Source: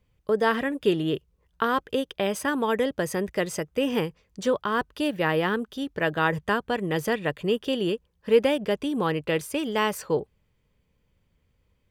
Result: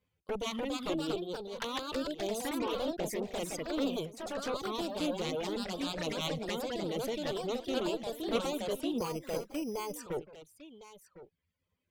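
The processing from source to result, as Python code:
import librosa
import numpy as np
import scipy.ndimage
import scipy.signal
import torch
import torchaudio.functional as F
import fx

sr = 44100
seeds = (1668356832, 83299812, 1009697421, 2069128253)

p1 = fx.highpass(x, sr, hz=100.0, slope=6)
p2 = fx.cheby_harmonics(p1, sr, harmonics=(3, 7, 8), levels_db=(-7, -21, -23), full_scale_db=-8.0)
p3 = fx.low_shelf(p2, sr, hz=130.0, db=-3.5)
p4 = fx.env_flanger(p3, sr, rest_ms=11.8, full_db=-27.0)
p5 = 10.0 ** (-27.0 / 20.0) * np.tanh(p4 / 10.0 ** (-27.0 / 20.0))
p6 = p4 + F.gain(torch.from_numpy(p5), -4.5).numpy()
p7 = fx.dereverb_blind(p6, sr, rt60_s=1.6)
p8 = p7 + fx.echo_single(p7, sr, ms=1056, db=-16.0, dry=0)
p9 = fx.echo_pitch(p8, sr, ms=329, semitones=2, count=2, db_per_echo=-3.0)
p10 = fx.resample_bad(p9, sr, factor=8, down='filtered', up='hold', at=(8.98, 9.94))
y = F.gain(torch.from_numpy(p10), -7.5).numpy()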